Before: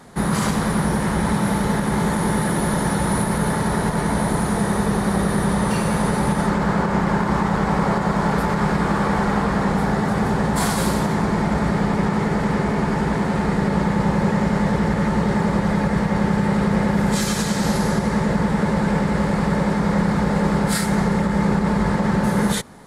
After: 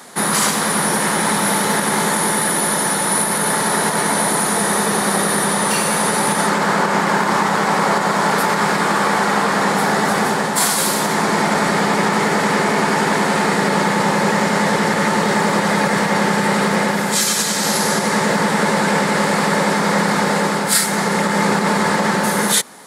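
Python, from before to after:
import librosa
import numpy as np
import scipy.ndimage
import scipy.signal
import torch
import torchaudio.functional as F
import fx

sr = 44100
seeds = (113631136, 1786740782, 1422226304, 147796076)

y = scipy.signal.sosfilt(scipy.signal.butter(2, 200.0, 'highpass', fs=sr, output='sos'), x)
y = fx.tilt_eq(y, sr, slope=2.5)
y = fx.rider(y, sr, range_db=10, speed_s=0.5)
y = F.gain(torch.from_numpy(y), 6.5).numpy()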